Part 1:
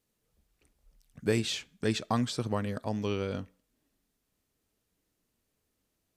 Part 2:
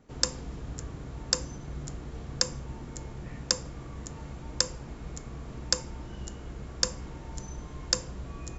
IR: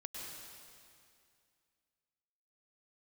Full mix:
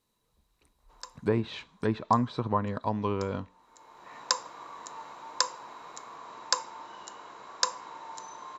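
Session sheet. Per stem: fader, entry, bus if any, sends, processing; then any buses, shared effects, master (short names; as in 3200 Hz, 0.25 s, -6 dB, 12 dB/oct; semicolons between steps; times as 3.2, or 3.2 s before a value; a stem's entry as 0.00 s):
+1.0 dB, 0.00 s, no send, treble ducked by the level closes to 1400 Hz, closed at -26 dBFS
-2.5 dB, 0.80 s, no send, HPF 520 Hz 12 dB/oct; bell 1200 Hz +5 dB 2.1 oct; auto duck -21 dB, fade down 1.25 s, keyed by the first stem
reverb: off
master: small resonant body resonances 1000/3900 Hz, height 14 dB, ringing for 20 ms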